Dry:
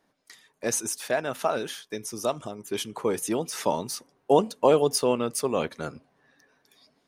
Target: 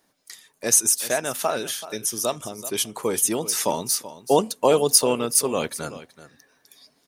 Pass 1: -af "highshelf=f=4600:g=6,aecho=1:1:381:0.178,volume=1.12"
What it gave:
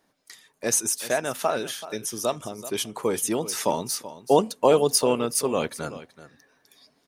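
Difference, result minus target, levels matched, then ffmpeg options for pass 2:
8 kHz band -3.0 dB
-af "highshelf=f=4600:g=14,aecho=1:1:381:0.178,volume=1.12"

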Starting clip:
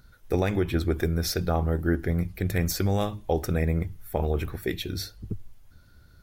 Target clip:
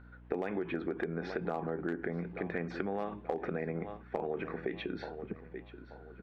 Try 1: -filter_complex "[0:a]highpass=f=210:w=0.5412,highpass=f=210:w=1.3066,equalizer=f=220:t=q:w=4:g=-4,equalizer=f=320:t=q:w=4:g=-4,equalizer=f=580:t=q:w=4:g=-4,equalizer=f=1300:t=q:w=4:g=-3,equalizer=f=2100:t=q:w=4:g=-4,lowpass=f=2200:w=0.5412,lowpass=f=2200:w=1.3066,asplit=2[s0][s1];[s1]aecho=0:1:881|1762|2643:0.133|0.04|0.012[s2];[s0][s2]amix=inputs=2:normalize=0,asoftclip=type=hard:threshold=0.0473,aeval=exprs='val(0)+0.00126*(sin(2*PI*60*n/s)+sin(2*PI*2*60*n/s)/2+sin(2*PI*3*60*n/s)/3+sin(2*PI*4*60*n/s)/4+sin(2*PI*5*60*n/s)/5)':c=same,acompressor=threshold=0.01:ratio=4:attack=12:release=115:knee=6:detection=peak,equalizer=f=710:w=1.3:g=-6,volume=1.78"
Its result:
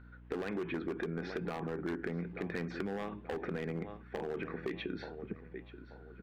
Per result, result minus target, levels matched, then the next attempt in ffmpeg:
hard clipper: distortion +15 dB; 1 kHz band -2.5 dB
-filter_complex "[0:a]highpass=f=210:w=0.5412,highpass=f=210:w=1.3066,equalizer=f=220:t=q:w=4:g=-4,equalizer=f=320:t=q:w=4:g=-4,equalizer=f=580:t=q:w=4:g=-4,equalizer=f=1300:t=q:w=4:g=-3,equalizer=f=2100:t=q:w=4:g=-4,lowpass=f=2200:w=0.5412,lowpass=f=2200:w=1.3066,asplit=2[s0][s1];[s1]aecho=0:1:881|1762|2643:0.133|0.04|0.012[s2];[s0][s2]amix=inputs=2:normalize=0,asoftclip=type=hard:threshold=0.119,aeval=exprs='val(0)+0.00126*(sin(2*PI*60*n/s)+sin(2*PI*2*60*n/s)/2+sin(2*PI*3*60*n/s)/3+sin(2*PI*4*60*n/s)/4+sin(2*PI*5*60*n/s)/5)':c=same,acompressor=threshold=0.01:ratio=4:attack=12:release=115:knee=6:detection=peak,equalizer=f=710:w=1.3:g=-6,volume=1.78"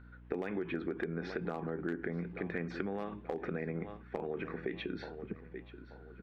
1 kHz band -3.0 dB
-filter_complex "[0:a]highpass=f=210:w=0.5412,highpass=f=210:w=1.3066,equalizer=f=220:t=q:w=4:g=-4,equalizer=f=320:t=q:w=4:g=-4,equalizer=f=580:t=q:w=4:g=-4,equalizer=f=1300:t=q:w=4:g=-3,equalizer=f=2100:t=q:w=4:g=-4,lowpass=f=2200:w=0.5412,lowpass=f=2200:w=1.3066,asplit=2[s0][s1];[s1]aecho=0:1:881|1762|2643:0.133|0.04|0.012[s2];[s0][s2]amix=inputs=2:normalize=0,asoftclip=type=hard:threshold=0.119,aeval=exprs='val(0)+0.00126*(sin(2*PI*60*n/s)+sin(2*PI*2*60*n/s)/2+sin(2*PI*3*60*n/s)/3+sin(2*PI*4*60*n/s)/4+sin(2*PI*5*60*n/s)/5)':c=same,acompressor=threshold=0.01:ratio=4:attack=12:release=115:knee=6:detection=peak,volume=1.78"

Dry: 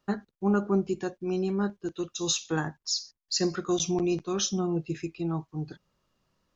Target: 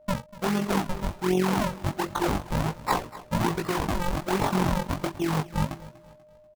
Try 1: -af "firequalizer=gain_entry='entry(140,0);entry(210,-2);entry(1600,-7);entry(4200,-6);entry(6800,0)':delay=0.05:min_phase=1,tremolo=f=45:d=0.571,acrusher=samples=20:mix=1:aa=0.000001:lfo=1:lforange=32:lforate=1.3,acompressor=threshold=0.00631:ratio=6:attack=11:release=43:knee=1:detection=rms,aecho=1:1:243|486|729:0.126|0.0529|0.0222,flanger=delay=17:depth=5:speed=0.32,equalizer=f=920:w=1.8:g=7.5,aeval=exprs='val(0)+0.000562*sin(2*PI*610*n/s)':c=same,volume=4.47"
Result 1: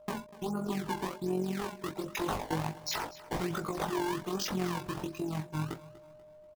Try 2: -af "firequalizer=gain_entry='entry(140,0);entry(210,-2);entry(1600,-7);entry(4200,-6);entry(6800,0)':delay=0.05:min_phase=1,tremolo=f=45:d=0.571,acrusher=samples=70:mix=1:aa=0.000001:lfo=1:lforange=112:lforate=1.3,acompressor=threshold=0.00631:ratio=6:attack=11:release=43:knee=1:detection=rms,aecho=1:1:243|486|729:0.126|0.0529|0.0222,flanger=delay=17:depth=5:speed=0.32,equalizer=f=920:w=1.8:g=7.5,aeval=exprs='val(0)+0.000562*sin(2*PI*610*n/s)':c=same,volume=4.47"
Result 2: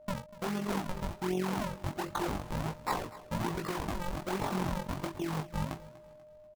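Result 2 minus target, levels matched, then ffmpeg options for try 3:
compression: peak gain reduction +8.5 dB
-af "firequalizer=gain_entry='entry(140,0);entry(210,-2);entry(1600,-7);entry(4200,-6);entry(6800,0)':delay=0.05:min_phase=1,tremolo=f=45:d=0.571,acrusher=samples=70:mix=1:aa=0.000001:lfo=1:lforange=112:lforate=1.3,acompressor=threshold=0.0211:ratio=6:attack=11:release=43:knee=1:detection=rms,aecho=1:1:243|486|729:0.126|0.0529|0.0222,flanger=delay=17:depth=5:speed=0.32,equalizer=f=920:w=1.8:g=7.5,aeval=exprs='val(0)+0.000562*sin(2*PI*610*n/s)':c=same,volume=4.47"

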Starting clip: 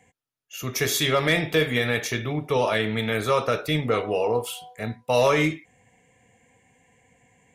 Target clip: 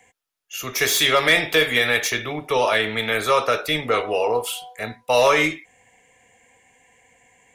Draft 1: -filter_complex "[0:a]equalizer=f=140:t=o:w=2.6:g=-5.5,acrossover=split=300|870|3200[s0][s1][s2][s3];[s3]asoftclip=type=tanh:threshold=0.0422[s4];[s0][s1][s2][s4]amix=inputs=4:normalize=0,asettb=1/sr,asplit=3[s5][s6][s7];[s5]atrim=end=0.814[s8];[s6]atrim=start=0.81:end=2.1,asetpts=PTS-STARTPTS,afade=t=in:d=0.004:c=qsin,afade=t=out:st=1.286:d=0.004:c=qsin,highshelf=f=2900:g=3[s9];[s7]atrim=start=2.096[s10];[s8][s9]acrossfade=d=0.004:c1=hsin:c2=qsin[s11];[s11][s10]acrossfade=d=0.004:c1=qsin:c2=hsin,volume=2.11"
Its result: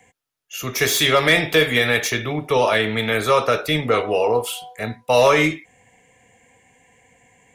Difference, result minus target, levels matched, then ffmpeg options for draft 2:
125 Hz band +6.5 dB
-filter_complex "[0:a]equalizer=f=140:t=o:w=2.6:g=-13.5,acrossover=split=300|870|3200[s0][s1][s2][s3];[s3]asoftclip=type=tanh:threshold=0.0422[s4];[s0][s1][s2][s4]amix=inputs=4:normalize=0,asettb=1/sr,asplit=3[s5][s6][s7];[s5]atrim=end=0.814[s8];[s6]atrim=start=0.81:end=2.1,asetpts=PTS-STARTPTS,afade=t=in:d=0.004:c=qsin,afade=t=out:st=1.286:d=0.004:c=qsin,highshelf=f=2900:g=3[s9];[s7]atrim=start=2.096[s10];[s8][s9]acrossfade=d=0.004:c1=hsin:c2=qsin[s11];[s11][s10]acrossfade=d=0.004:c1=qsin:c2=hsin,volume=2.11"

